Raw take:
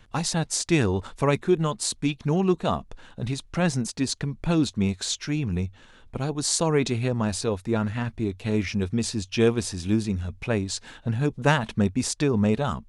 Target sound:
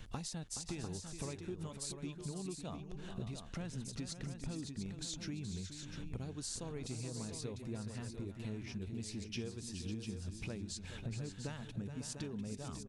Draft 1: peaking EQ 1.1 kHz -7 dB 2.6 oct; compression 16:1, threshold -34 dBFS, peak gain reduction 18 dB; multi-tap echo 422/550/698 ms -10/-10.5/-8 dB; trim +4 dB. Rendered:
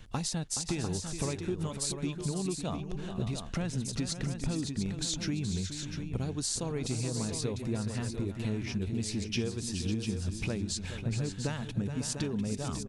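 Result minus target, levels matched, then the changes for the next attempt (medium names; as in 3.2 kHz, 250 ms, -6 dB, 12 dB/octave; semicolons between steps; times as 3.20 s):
compression: peak gain reduction -10 dB
change: compression 16:1, threshold -44.5 dBFS, peak gain reduction 28 dB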